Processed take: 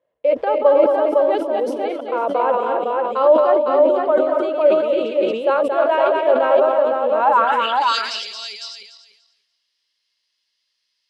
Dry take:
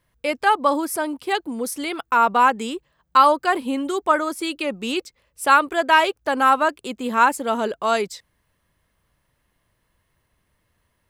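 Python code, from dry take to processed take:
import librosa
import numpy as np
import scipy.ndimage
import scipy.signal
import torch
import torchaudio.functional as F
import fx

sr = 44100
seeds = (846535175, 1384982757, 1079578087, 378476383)

p1 = fx.reverse_delay_fb(x, sr, ms=146, feedback_pct=43, wet_db=-6.0)
p2 = fx.peak_eq(p1, sr, hz=370.0, db=6.5, octaves=2.4)
p3 = fx.filter_sweep_bandpass(p2, sr, from_hz=560.0, to_hz=5000.0, start_s=7.18, end_s=7.84, q=5.9)
p4 = fx.peak_eq(p3, sr, hz=3200.0, db=12.5, octaves=1.7)
p5 = p4 + fx.echo_multitap(p4, sr, ms=(225, 507), db=(-5.0, -3.0), dry=0)
p6 = fx.sustainer(p5, sr, db_per_s=54.0)
y = F.gain(torch.from_numpy(p6), 4.0).numpy()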